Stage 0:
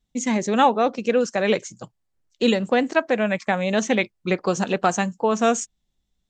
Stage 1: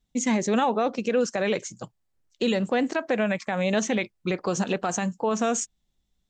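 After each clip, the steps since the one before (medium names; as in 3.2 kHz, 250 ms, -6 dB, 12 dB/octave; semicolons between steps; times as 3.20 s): peak limiter -15 dBFS, peak gain reduction 10 dB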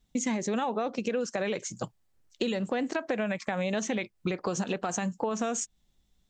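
compression 6:1, threshold -32 dBFS, peak gain reduction 12.5 dB; trim +4.5 dB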